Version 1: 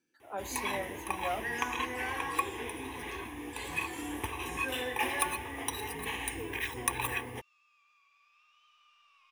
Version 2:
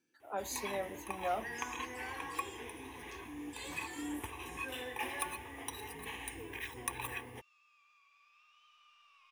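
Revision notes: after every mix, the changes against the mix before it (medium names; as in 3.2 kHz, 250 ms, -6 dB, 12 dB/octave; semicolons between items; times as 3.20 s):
first sound -7.5 dB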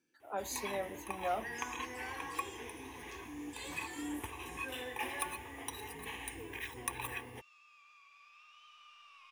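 second sound +6.5 dB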